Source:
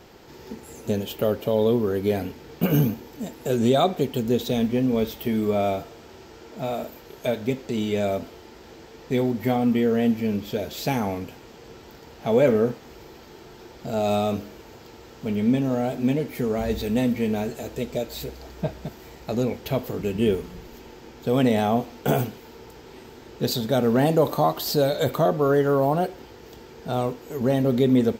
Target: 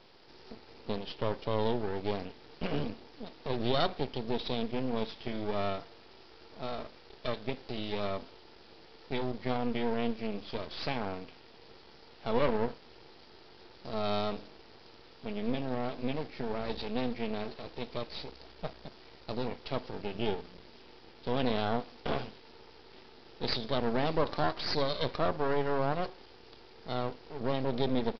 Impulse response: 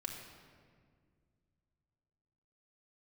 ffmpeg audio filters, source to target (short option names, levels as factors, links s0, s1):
-af "bass=f=250:g=-6,treble=f=4000:g=12,aresample=11025,aeval=exprs='max(val(0),0)':c=same,aresample=44100,volume=0.531"